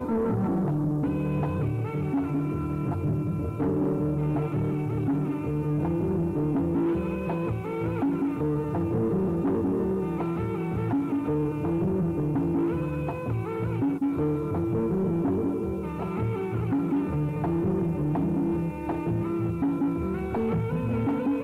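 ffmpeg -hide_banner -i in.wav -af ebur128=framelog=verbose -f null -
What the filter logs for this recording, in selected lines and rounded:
Integrated loudness:
  I:         -27.5 LUFS
  Threshold: -37.5 LUFS
Loudness range:
  LRA:         0.6 LU
  Threshold: -47.5 LUFS
  LRA low:   -27.8 LUFS
  LRA high:  -27.1 LUFS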